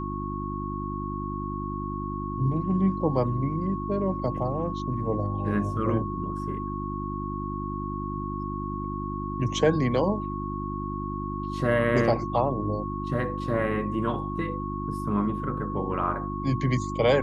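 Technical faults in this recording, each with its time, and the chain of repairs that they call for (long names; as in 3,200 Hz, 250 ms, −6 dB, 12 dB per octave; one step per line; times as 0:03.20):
mains hum 50 Hz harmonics 7 −33 dBFS
whistle 1,100 Hz −34 dBFS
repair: notch filter 1,100 Hz, Q 30
hum removal 50 Hz, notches 7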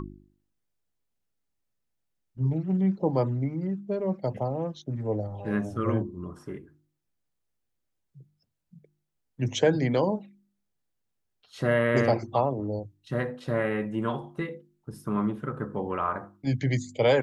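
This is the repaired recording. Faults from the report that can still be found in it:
none of them is left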